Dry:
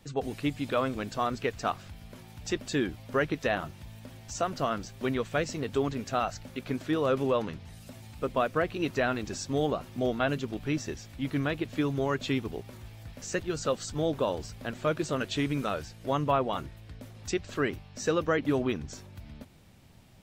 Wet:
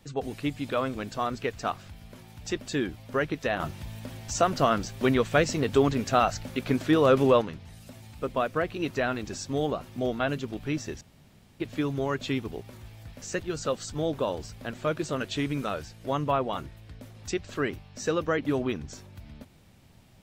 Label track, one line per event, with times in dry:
3.600000	7.410000	gain +6.5 dB
11.010000	11.600000	room tone

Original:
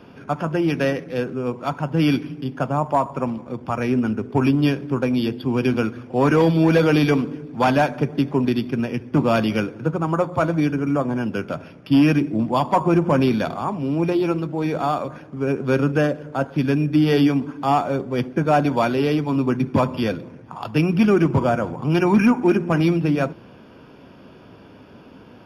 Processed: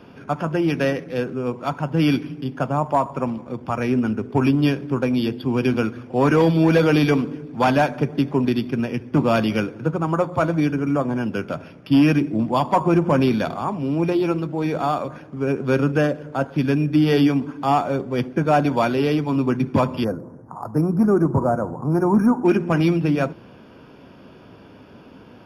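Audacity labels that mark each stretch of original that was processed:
20.040000	22.450000	Chebyshev band-stop 1.1–8.1 kHz

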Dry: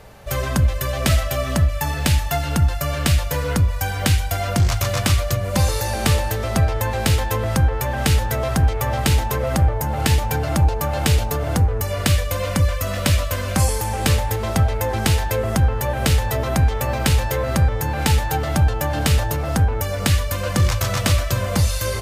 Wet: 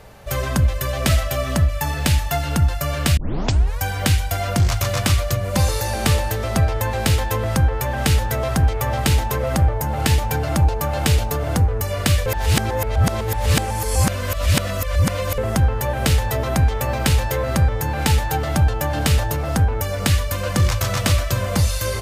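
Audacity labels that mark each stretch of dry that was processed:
3.170000	3.170000	tape start 0.62 s
12.260000	15.380000	reverse

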